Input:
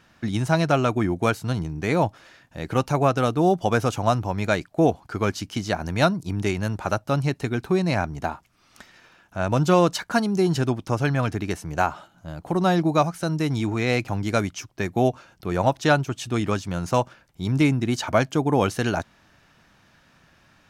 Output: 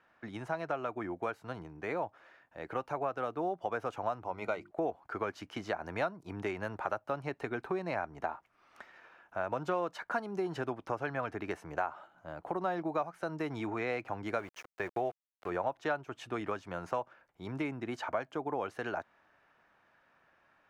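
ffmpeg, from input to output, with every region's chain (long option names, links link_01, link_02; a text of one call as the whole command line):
ffmpeg -i in.wav -filter_complex "[0:a]asettb=1/sr,asplit=3[link_01][link_02][link_03];[link_01]atrim=end=4.244[link_04];[link_02]atrim=start=4.24:end=4.71,asetpts=PTS-STARTPTS,afade=type=in:duration=0.004:curve=qsin,afade=type=out:start_time=0.466:duration=0.004:curve=qsin,asuperstop=centerf=1700:order=12:qfactor=5.5,bandreject=frequency=50:width_type=h:width=6,bandreject=frequency=100:width_type=h:width=6,bandreject=frequency=150:width_type=h:width=6,bandreject=frequency=200:width_type=h:width=6,bandreject=frequency=250:width_type=h:width=6,bandreject=frequency=300:width_type=h:width=6,bandreject=frequency=350:width_type=h:width=6[link_05];[link_03]atrim=start=4.706[link_06];[link_04][link_05]acrossfade=duration=0.004:curve1=hsin:curve2=qsin[link_07];[link_07][link_06]acrossfade=duration=0.004:curve1=qsin:curve2=hsin,asettb=1/sr,asplit=3[link_08][link_09][link_10];[link_08]atrim=end=14.394[link_11];[link_09]atrim=start=14.39:end=15.5,asetpts=PTS-STARTPTS,afade=type=in:duration=0.004:curve=qsin,afade=type=out:start_time=1.106:duration=0.004:curve=qsin,equalizer=frequency=230:width_type=o:width=0.43:gain=-7,aeval=exprs='val(0)*gte(abs(val(0)),0.0178)':channel_layout=same[link_12];[link_10]atrim=start=15.496[link_13];[link_11][link_12]acrossfade=duration=0.004:curve1=hsin:curve2=qsin[link_14];[link_14][link_13]acrossfade=duration=0.004:curve1=qsin:curve2=hsin,dynaudnorm=framelen=630:gausssize=13:maxgain=11.5dB,acrossover=split=370 2300:gain=0.158 1 0.126[link_15][link_16][link_17];[link_15][link_16][link_17]amix=inputs=3:normalize=0,acompressor=threshold=-26dB:ratio=3,volume=-6.5dB" out.wav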